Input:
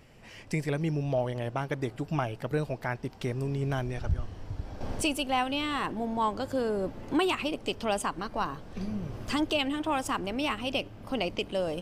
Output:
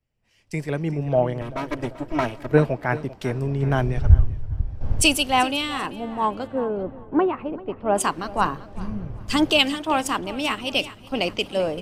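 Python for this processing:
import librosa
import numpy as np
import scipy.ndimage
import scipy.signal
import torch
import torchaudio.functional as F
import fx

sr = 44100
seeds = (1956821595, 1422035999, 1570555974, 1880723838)

p1 = fx.lower_of_two(x, sr, delay_ms=3.1, at=(1.41, 2.49))
p2 = fx.rider(p1, sr, range_db=5, speed_s=2.0)
p3 = fx.lowpass(p2, sr, hz=1300.0, slope=12, at=(6.46, 7.94), fade=0.02)
p4 = p3 + fx.echo_feedback(p3, sr, ms=390, feedback_pct=43, wet_db=-13, dry=0)
p5 = fx.band_widen(p4, sr, depth_pct=100)
y = F.gain(torch.from_numpy(p5), 6.0).numpy()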